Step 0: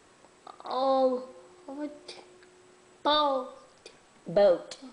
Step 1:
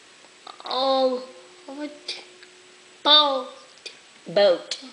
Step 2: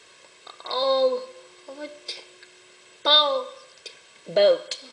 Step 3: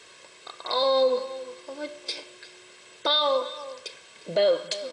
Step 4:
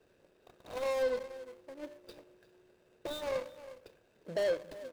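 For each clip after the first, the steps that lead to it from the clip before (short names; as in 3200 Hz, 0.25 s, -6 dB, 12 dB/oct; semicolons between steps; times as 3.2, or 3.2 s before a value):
weighting filter D; gain +4 dB
comb 1.9 ms, depth 56%; gain -3 dB
limiter -15.5 dBFS, peak gain reduction 9.5 dB; outdoor echo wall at 61 m, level -15 dB; gain +1.5 dB
median filter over 41 samples; gain -7 dB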